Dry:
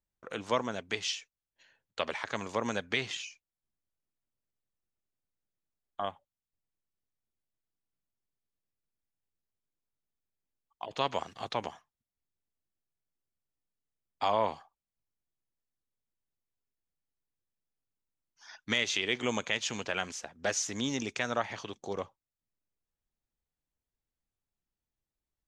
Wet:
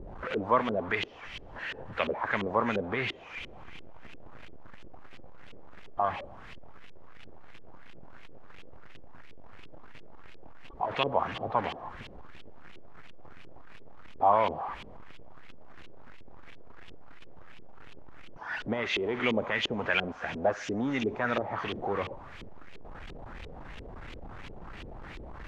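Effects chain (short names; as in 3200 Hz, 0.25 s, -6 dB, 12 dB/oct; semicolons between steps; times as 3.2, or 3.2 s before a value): zero-crossing step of -34 dBFS; thinning echo 67 ms, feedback 85%, high-pass 840 Hz, level -14.5 dB; LFO low-pass saw up 2.9 Hz 370–3100 Hz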